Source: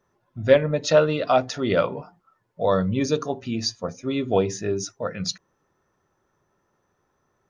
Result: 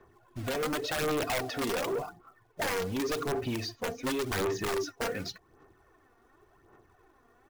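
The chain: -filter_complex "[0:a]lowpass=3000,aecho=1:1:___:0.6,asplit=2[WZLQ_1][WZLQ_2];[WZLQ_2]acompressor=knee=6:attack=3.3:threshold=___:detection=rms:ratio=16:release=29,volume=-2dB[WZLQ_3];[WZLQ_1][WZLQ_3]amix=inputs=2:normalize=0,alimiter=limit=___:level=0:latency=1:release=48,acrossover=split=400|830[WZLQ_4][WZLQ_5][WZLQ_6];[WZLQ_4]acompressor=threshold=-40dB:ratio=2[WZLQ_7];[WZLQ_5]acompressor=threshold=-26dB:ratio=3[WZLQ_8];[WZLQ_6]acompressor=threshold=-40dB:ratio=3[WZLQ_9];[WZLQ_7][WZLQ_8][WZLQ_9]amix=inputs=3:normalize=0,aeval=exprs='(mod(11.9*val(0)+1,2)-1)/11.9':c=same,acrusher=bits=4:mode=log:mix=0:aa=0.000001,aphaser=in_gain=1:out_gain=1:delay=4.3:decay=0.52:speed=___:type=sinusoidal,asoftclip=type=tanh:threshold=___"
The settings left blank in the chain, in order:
2.7, -29dB, -16dB, 0.89, -27dB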